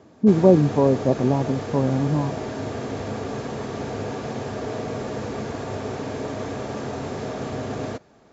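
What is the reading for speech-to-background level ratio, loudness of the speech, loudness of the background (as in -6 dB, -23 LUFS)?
10.5 dB, -20.0 LUFS, -30.5 LUFS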